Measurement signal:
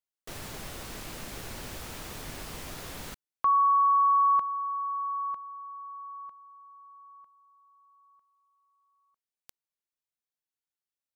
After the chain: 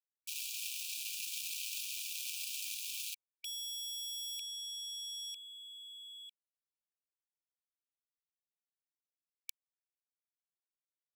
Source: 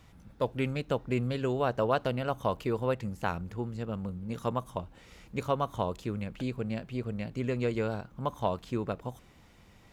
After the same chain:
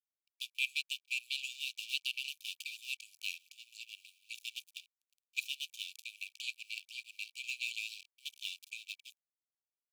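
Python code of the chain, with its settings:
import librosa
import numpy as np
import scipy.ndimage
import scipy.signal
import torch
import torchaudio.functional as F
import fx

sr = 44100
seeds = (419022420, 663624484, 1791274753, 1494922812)

y = np.sign(x) * np.maximum(np.abs(x) - 10.0 ** (-43.0 / 20.0), 0.0)
y = fx.brickwall_highpass(y, sr, low_hz=2300.0)
y = y * 10.0 ** (9.0 / 20.0)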